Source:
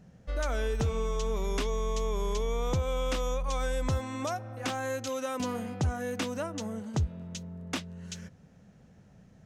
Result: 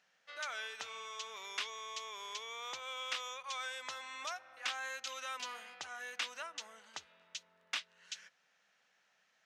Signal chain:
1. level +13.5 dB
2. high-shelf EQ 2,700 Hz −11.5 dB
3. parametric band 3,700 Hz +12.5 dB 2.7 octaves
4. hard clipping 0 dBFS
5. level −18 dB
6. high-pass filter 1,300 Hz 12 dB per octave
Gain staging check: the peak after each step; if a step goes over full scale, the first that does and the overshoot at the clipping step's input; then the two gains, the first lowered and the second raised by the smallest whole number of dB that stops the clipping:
−8.0, −8.0, −3.0, −3.0, −21.0, −23.5 dBFS
no step passes full scale

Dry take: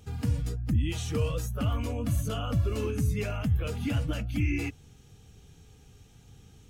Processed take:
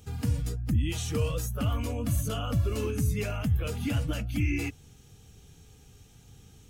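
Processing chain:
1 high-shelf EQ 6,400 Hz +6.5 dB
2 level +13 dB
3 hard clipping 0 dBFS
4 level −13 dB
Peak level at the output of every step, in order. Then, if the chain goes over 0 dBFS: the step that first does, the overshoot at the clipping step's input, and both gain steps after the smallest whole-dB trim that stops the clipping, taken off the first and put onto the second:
−17.0, −4.0, −4.0, −17.0 dBFS
no step passes full scale

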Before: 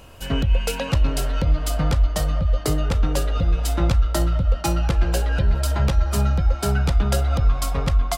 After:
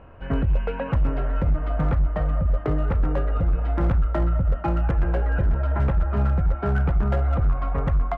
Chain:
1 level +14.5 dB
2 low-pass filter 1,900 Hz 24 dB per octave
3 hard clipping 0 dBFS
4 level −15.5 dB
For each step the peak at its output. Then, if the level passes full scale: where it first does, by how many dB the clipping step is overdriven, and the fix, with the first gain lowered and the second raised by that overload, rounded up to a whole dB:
+7.5, +6.5, 0.0, −15.5 dBFS
step 1, 6.5 dB
step 1 +7.5 dB, step 4 −8.5 dB

